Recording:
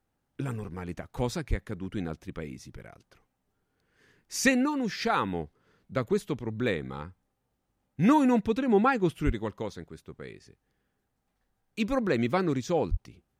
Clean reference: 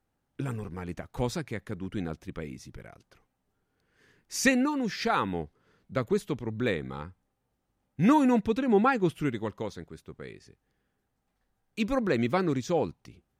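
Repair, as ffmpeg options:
-filter_complex "[0:a]asplit=3[s0][s1][s2];[s0]afade=t=out:st=1.49:d=0.02[s3];[s1]highpass=f=140:w=0.5412,highpass=f=140:w=1.3066,afade=t=in:st=1.49:d=0.02,afade=t=out:st=1.61:d=0.02[s4];[s2]afade=t=in:st=1.61:d=0.02[s5];[s3][s4][s5]amix=inputs=3:normalize=0,asplit=3[s6][s7][s8];[s6]afade=t=out:st=9.25:d=0.02[s9];[s7]highpass=f=140:w=0.5412,highpass=f=140:w=1.3066,afade=t=in:st=9.25:d=0.02,afade=t=out:st=9.37:d=0.02[s10];[s8]afade=t=in:st=9.37:d=0.02[s11];[s9][s10][s11]amix=inputs=3:normalize=0,asplit=3[s12][s13][s14];[s12]afade=t=out:st=12.9:d=0.02[s15];[s13]highpass=f=140:w=0.5412,highpass=f=140:w=1.3066,afade=t=in:st=12.9:d=0.02,afade=t=out:st=13.02:d=0.02[s16];[s14]afade=t=in:st=13.02:d=0.02[s17];[s15][s16][s17]amix=inputs=3:normalize=0"

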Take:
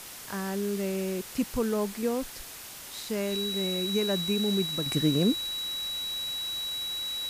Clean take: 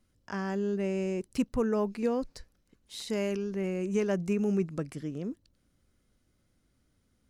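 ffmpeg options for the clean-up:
-af "bandreject=f=3900:w=30,afwtdn=0.0079,asetnsamples=n=441:p=0,asendcmd='4.86 volume volume -11.5dB',volume=1"

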